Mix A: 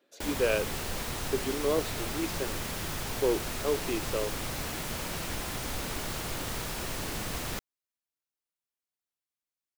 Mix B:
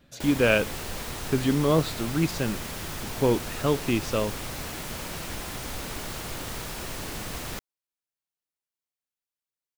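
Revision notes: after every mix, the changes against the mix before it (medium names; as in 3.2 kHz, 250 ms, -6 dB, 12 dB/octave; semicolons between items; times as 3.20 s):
speech: remove ladder high-pass 330 Hz, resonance 50%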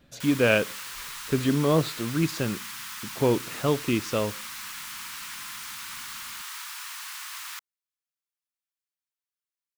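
background: add steep high-pass 990 Hz 48 dB/octave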